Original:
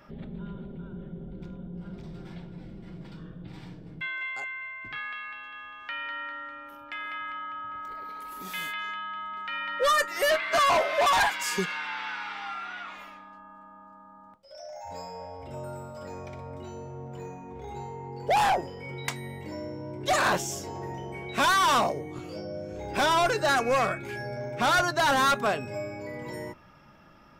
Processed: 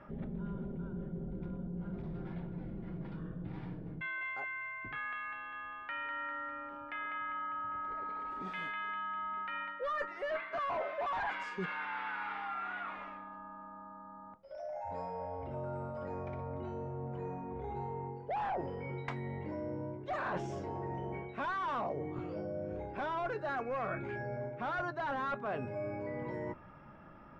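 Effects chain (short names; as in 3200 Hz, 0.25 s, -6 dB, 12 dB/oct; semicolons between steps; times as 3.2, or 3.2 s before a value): LPF 1700 Hz 12 dB/oct; reverse; compressor 5:1, threshold -37 dBFS, peak gain reduction 14.5 dB; reverse; gain +1 dB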